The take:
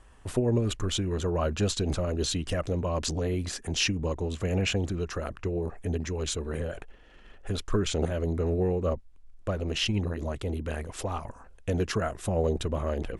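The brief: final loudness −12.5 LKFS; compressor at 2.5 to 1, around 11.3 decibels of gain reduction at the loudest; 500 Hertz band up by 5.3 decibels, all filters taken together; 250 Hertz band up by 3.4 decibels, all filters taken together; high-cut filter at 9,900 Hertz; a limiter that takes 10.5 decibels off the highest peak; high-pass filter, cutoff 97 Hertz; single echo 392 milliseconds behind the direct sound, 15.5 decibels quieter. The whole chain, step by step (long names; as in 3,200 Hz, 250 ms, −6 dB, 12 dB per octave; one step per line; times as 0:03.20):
high-pass filter 97 Hz
low-pass filter 9,900 Hz
parametric band 250 Hz +3 dB
parametric band 500 Hz +5.5 dB
downward compressor 2.5 to 1, threshold −35 dBFS
brickwall limiter −29 dBFS
single-tap delay 392 ms −15.5 dB
level +26.5 dB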